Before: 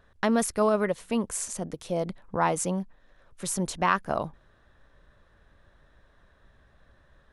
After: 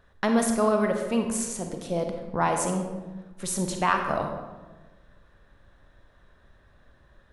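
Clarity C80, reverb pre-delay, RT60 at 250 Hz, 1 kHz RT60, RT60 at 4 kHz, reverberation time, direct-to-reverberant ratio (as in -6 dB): 7.0 dB, 32 ms, 1.6 s, 1.1 s, 0.75 s, 1.2 s, 3.5 dB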